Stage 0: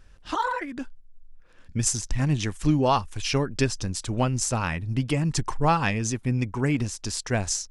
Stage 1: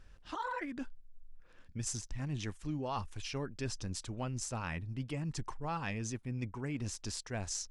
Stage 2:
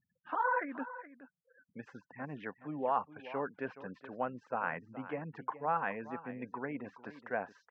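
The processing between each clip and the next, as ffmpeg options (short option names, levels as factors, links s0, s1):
-af "highshelf=f=9800:g=-7.5,areverse,acompressor=threshold=0.0251:ratio=4,areverse,volume=0.596"
-af "afftfilt=real='re*gte(hypot(re,im),0.00224)':imag='im*gte(hypot(re,im),0.00224)':win_size=1024:overlap=0.75,highpass=f=210:w=0.5412,highpass=f=210:w=1.3066,equalizer=f=220:t=q:w=4:g=-5,equalizer=f=340:t=q:w=4:g=-8,equalizer=f=500:t=q:w=4:g=5,equalizer=f=740:t=q:w=4:g=5,equalizer=f=1000:t=q:w=4:g=3,equalizer=f=1500:t=q:w=4:g=6,lowpass=f=2000:w=0.5412,lowpass=f=2000:w=1.3066,aecho=1:1:422:0.188,volume=1.41"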